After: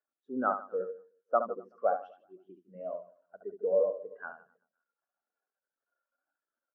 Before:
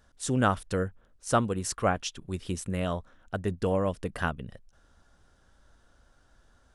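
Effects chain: jump at every zero crossing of -38 dBFS; band-pass 340–2900 Hz; reverse bouncing-ball echo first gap 70 ms, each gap 1.2×, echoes 5; spectral contrast expander 2.5:1; trim -4 dB

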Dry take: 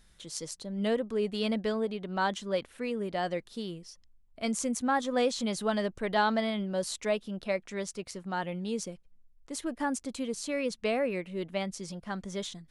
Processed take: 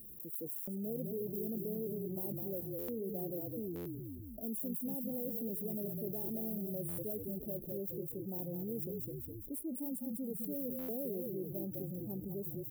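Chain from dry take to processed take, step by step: block-companded coder 3-bit; high-pass 1.1 kHz 6 dB/octave; spectral noise reduction 12 dB; inverse Chebyshev band-stop 1.6–4.5 kHz, stop band 80 dB; peak limiter -36 dBFS, peak gain reduction 7.5 dB; frequency-shifting echo 206 ms, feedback 31%, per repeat -40 Hz, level -6 dB; buffer glitch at 0.57/2.78/3.75/6.88/10.78 s, samples 512, times 8; level flattener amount 70%; trim +3.5 dB

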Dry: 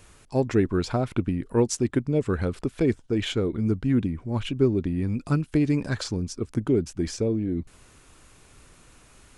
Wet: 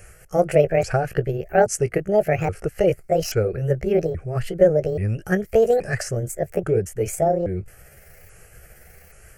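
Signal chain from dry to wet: sawtooth pitch modulation +9.5 st, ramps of 829 ms; static phaser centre 1 kHz, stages 6; trim +8.5 dB

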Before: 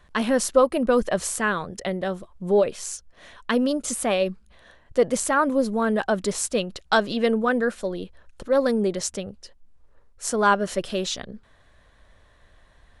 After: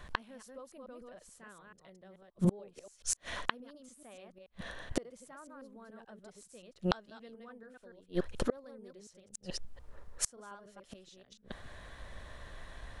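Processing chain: chunks repeated in reverse 144 ms, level -3 dB; in parallel at +1 dB: peak limiter -13 dBFS, peak gain reduction 8.5 dB; on the sum: inverted gate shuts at -15 dBFS, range -36 dB; trim -1 dB

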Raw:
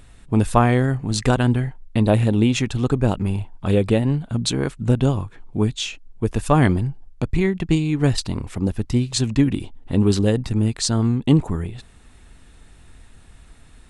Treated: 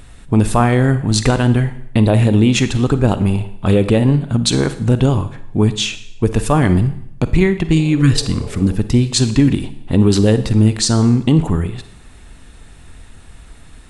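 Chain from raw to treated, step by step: spectral replace 7.76–8.73 s, 380–1000 Hz after; peak limiter -10 dBFS, peak gain reduction 8 dB; Schroeder reverb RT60 0.72 s, DRR 11.5 dB; trim +7 dB

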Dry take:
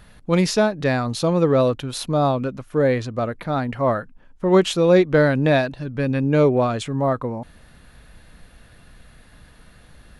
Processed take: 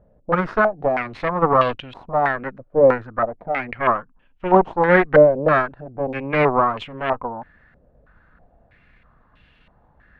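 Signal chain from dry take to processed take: Chebyshev shaper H 3 -18 dB, 6 -16 dB, 7 -31 dB, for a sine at -4.5 dBFS; step-sequenced low-pass 3.1 Hz 570–2800 Hz; trim -1 dB

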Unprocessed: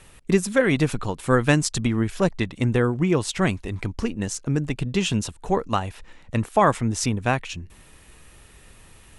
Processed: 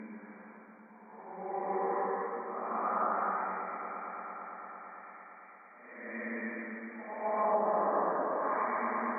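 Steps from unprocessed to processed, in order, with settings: brick-wall FIR band-pass 180–2400 Hz; tilt EQ +4.5 dB/octave; Paulstretch 5.5×, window 0.25 s, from 5.20 s; on a send: echo with a slow build-up 113 ms, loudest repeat 5, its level -16.5 dB; on the sum: low-pass that closes with the level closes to 700 Hz, closed at -16 dBFS; trim -7.5 dB

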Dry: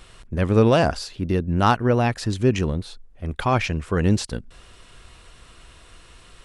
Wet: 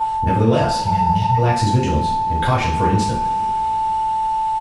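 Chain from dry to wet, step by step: whistle 880 Hz -26 dBFS; compression, threshold -21 dBFS, peak gain reduction 10.5 dB; spectral replace 1.17–1.91 s, 200–1800 Hz before; tempo 1.4×; two-slope reverb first 0.48 s, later 4.2 s, from -22 dB, DRR -7 dB

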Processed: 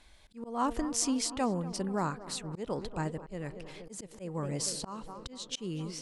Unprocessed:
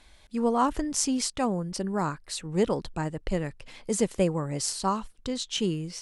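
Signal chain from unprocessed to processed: tape echo 236 ms, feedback 83%, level -15.5 dB, low-pass 2.1 kHz; slow attack 255 ms; trim -3.5 dB

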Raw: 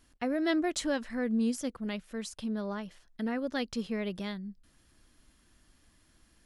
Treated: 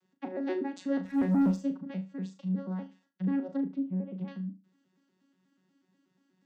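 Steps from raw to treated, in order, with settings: vocoder on a broken chord bare fifth, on F#3, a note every 121 ms; 1.05–1.57 s: waveshaping leveller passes 2; 3.50–4.28 s: low-pass that closes with the level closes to 650 Hz, closed at -29.5 dBFS; on a send: flutter echo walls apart 6.3 m, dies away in 0.28 s

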